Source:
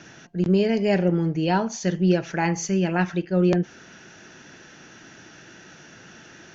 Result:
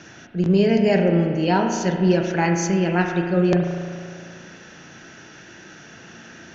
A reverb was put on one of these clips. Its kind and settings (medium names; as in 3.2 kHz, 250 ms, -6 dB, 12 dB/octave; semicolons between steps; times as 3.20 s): spring tank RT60 2.1 s, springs 35 ms, chirp 70 ms, DRR 3.5 dB; trim +2 dB